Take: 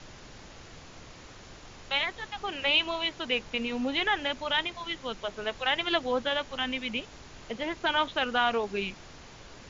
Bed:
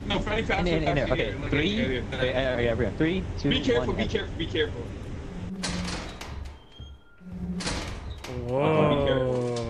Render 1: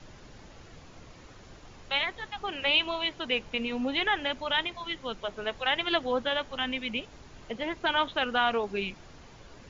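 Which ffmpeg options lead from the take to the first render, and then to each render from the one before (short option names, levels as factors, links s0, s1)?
-af "afftdn=nr=6:nf=-49"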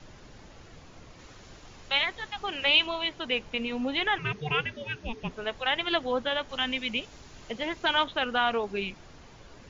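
-filter_complex "[0:a]asettb=1/sr,asplit=3[s0][s1][s2];[s0]atrim=end=1.194[s3];[s1]atrim=start=1.19:end=2.87,asetpts=PTS-STARTPTS,afade=t=in:d=0.004:c=qsin,afade=t=out:st=1.676:d=0.004:c=qsin,highshelf=f=2200:g=4.5[s4];[s2]atrim=start=2.866[s5];[s3][s4]acrossfade=d=0.004:c1=hsin:c2=qsin[s6];[s6][s5]acrossfade=d=0.004:c1=qsin:c2=hsin,asettb=1/sr,asplit=3[s7][s8][s9];[s7]atrim=end=4.184[s10];[s8]atrim=start=4.18:end=5.31,asetpts=PTS-STARTPTS,afade=t=in:d=0.004:c=qsin,afade=t=out:st=1.126:d=0.004:c=qsin,afreqshift=-450[s11];[s9]atrim=start=5.306[s12];[s10][s11]acrossfade=d=0.004:c1=hsin:c2=qsin[s13];[s13][s12]acrossfade=d=0.004:c1=qsin:c2=hsin,asettb=1/sr,asplit=3[s14][s15][s16];[s14]atrim=end=6.494[s17];[s15]atrim=start=6.49:end=8.04,asetpts=PTS-STARTPTS,afade=t=in:d=0.004:c=qsin,afade=t=out:st=1.546:d=0.004:c=qsin,highshelf=f=3500:g=7.5[s18];[s16]atrim=start=8.036[s19];[s17][s18]acrossfade=d=0.004:c1=hsin:c2=qsin[s20];[s20][s19]acrossfade=d=0.004:c1=qsin:c2=hsin"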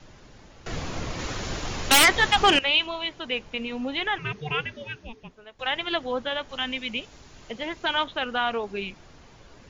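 -filter_complex "[0:a]asettb=1/sr,asplit=3[s0][s1][s2];[s0]atrim=end=0.664[s3];[s1]atrim=start=0.66:end=2.59,asetpts=PTS-STARTPTS,afade=t=in:d=0.004:c=qsin,afade=t=out:st=1.926:d=0.004:c=qsin,aeval=exprs='0.266*sin(PI/2*5.01*val(0)/0.266)':c=same[s4];[s2]atrim=start=2.586[s5];[s3][s4]acrossfade=d=0.004:c1=hsin:c2=qsin[s6];[s6][s5]acrossfade=d=0.004:c1=qsin:c2=hsin,asplit=2[s7][s8];[s7]atrim=end=5.59,asetpts=PTS-STARTPTS,afade=t=out:st=4.84:d=0.75:c=qua:silence=0.16788[s9];[s8]atrim=start=5.59,asetpts=PTS-STARTPTS,afade=t=in:d=0.004:c=hsin:silence=0.16788[s10];[s9][s10]concat=n=2:v=0:a=1"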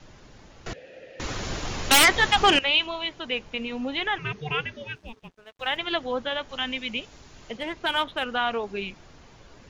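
-filter_complex "[0:a]asettb=1/sr,asplit=3[s0][s1][s2];[s0]atrim=end=0.734[s3];[s1]atrim=start=0.73:end=1.2,asetpts=PTS-STARTPTS,afade=t=in:d=0.004:c=qsin,afade=t=out:st=0.466:d=0.004:c=qsin,asplit=3[s4][s5][s6];[s4]bandpass=f=530:t=q:w=8,volume=1[s7];[s5]bandpass=f=1840:t=q:w=8,volume=0.501[s8];[s6]bandpass=f=2480:t=q:w=8,volume=0.355[s9];[s7][s8][s9]amix=inputs=3:normalize=0[s10];[s2]atrim=start=1.196[s11];[s3][s10]acrossfade=d=0.004:c1=hsin:c2=qsin[s12];[s12][s11]acrossfade=d=0.004:c1=qsin:c2=hsin,asettb=1/sr,asplit=3[s13][s14][s15];[s13]atrim=end=4.954[s16];[s14]atrim=start=4.95:end=5.77,asetpts=PTS-STARTPTS,afade=t=in:d=0.004:c=qsin,afade=t=out:st=0.816:d=0.004:c=qsin,aeval=exprs='sgn(val(0))*max(abs(val(0))-0.0015,0)':c=same[s17];[s15]atrim=start=5.766[s18];[s16][s17]acrossfade=d=0.004:c1=hsin:c2=qsin[s19];[s19][s18]acrossfade=d=0.004:c1=qsin:c2=hsin,asettb=1/sr,asplit=3[s20][s21][s22];[s20]atrim=end=7.574[s23];[s21]atrim=start=7.57:end=8.24,asetpts=PTS-STARTPTS,afade=t=in:d=0.004:c=qsin,afade=t=out:st=0.666:d=0.004:c=qsin,adynamicsmooth=sensitivity=7.5:basefreq=5900[s24];[s22]atrim=start=8.236[s25];[s23][s24]acrossfade=d=0.004:c1=hsin:c2=qsin[s26];[s26][s25]acrossfade=d=0.004:c1=qsin:c2=hsin"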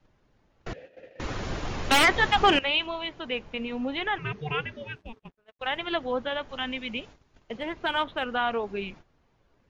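-af "lowpass=f=2200:p=1,agate=range=0.158:threshold=0.00562:ratio=16:detection=peak"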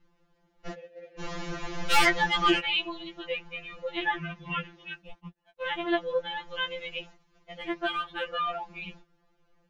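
-af "afftfilt=real='re*2.83*eq(mod(b,8),0)':imag='im*2.83*eq(mod(b,8),0)':win_size=2048:overlap=0.75"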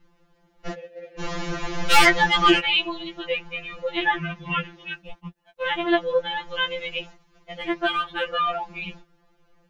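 -af "volume=2.11"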